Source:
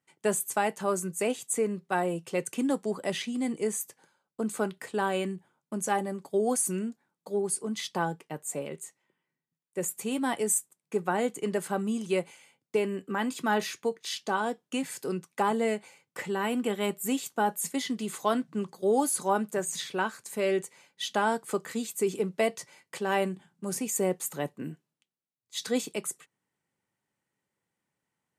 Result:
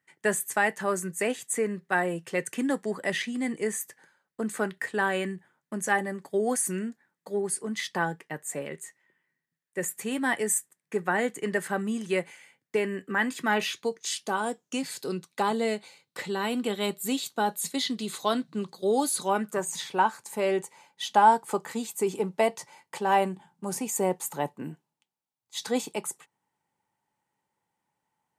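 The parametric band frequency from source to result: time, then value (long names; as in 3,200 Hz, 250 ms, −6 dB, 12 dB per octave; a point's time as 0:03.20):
parametric band +13 dB 0.42 octaves
0:13.45 1,800 Hz
0:14.31 12,000 Hz
0:14.94 4,000 Hz
0:19.20 4,000 Hz
0:19.64 870 Hz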